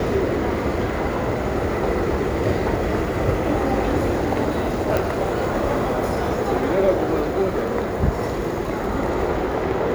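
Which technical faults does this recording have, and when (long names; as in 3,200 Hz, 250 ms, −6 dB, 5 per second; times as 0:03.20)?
0:04.97: click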